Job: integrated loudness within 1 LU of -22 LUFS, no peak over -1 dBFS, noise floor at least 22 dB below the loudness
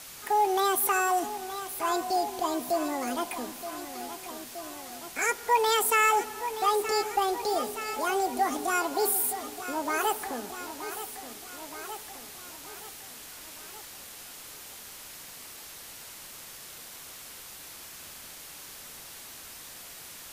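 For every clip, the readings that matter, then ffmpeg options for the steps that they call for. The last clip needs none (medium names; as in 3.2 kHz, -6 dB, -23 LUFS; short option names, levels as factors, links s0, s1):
noise floor -46 dBFS; noise floor target -51 dBFS; loudness -28.5 LUFS; peak level -13.5 dBFS; loudness target -22.0 LUFS
-> -af "afftdn=nr=6:nf=-46"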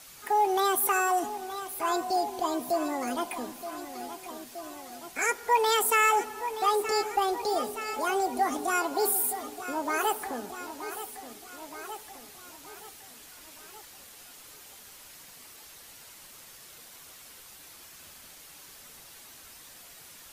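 noise floor -50 dBFS; noise floor target -51 dBFS
-> -af "afftdn=nr=6:nf=-50"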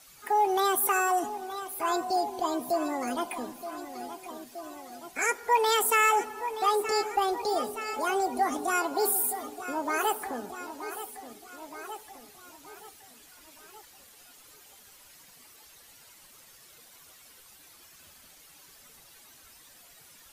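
noise floor -55 dBFS; loudness -28.5 LUFS; peak level -13.5 dBFS; loudness target -22.0 LUFS
-> -af "volume=2.11"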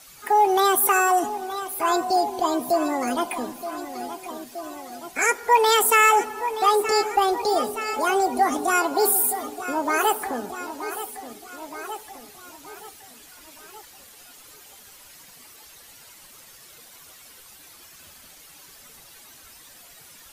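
loudness -22.0 LUFS; peak level -7.0 dBFS; noise floor -48 dBFS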